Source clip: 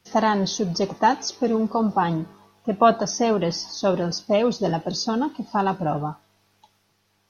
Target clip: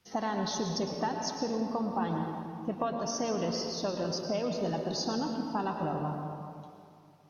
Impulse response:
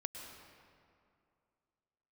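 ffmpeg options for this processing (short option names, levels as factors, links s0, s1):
-filter_complex "[0:a]acompressor=threshold=0.0708:ratio=6[s0];[1:a]atrim=start_sample=2205[s1];[s0][s1]afir=irnorm=-1:irlink=0,volume=0.668"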